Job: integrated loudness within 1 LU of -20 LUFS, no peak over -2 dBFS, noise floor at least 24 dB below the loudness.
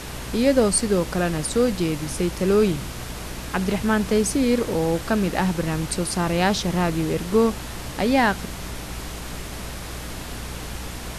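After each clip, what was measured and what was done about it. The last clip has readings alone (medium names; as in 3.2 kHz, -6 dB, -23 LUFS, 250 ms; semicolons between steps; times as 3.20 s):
hum 60 Hz; highest harmonic 300 Hz; hum level -35 dBFS; noise floor -34 dBFS; noise floor target -47 dBFS; loudness -23.0 LUFS; peak level -5.5 dBFS; loudness target -20.0 LUFS
-> de-hum 60 Hz, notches 5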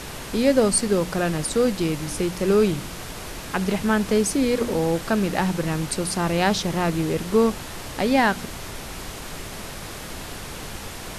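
hum not found; noise floor -36 dBFS; noise floor target -47 dBFS
-> noise print and reduce 11 dB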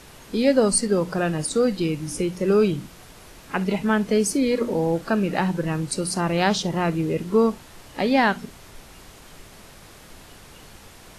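noise floor -47 dBFS; loudness -22.5 LUFS; peak level -6.0 dBFS; loudness target -20.0 LUFS
-> trim +2.5 dB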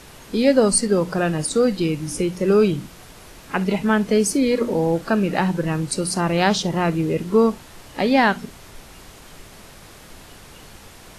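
loudness -20.0 LUFS; peak level -3.5 dBFS; noise floor -44 dBFS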